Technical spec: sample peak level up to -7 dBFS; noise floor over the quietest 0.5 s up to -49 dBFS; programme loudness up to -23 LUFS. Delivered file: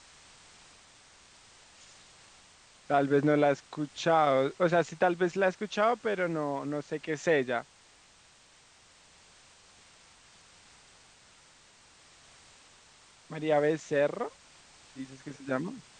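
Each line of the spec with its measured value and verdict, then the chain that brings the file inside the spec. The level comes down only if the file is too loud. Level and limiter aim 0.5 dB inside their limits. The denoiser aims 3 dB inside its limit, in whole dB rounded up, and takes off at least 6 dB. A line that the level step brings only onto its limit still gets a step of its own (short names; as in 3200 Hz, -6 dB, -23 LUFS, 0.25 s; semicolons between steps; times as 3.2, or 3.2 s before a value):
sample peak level -11.5 dBFS: OK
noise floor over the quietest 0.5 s -60 dBFS: OK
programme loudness -29.0 LUFS: OK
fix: none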